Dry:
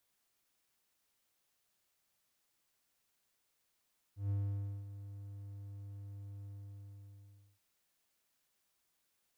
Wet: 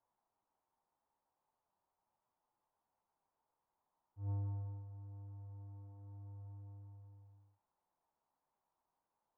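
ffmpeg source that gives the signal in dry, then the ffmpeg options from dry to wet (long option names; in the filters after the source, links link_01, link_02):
-f lavfi -i "aevalsrc='0.0335*(1-4*abs(mod(100*t+0.25,1)-0.5))':duration=3.43:sample_rate=44100,afade=type=in:duration=0.139,afade=type=out:start_time=0.139:duration=0.549:silence=0.211,afade=type=out:start_time=2.28:duration=1.15"
-af "lowpass=frequency=910:width_type=q:width=4.7,flanger=delay=7.6:depth=6.8:regen=-44:speed=0.42:shape=triangular"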